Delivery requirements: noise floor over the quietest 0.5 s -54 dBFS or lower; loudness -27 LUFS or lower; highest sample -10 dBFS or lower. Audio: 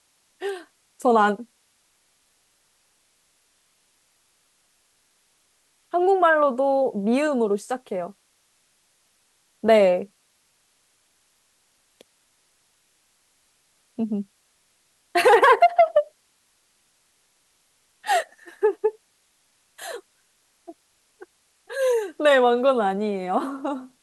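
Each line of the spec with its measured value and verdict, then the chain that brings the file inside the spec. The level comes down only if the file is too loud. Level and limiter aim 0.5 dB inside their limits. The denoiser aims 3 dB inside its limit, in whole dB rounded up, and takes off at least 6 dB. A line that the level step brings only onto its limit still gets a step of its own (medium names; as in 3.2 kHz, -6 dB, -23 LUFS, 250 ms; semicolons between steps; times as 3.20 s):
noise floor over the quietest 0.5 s -66 dBFS: pass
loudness -21.5 LUFS: fail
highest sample -6.5 dBFS: fail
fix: trim -6 dB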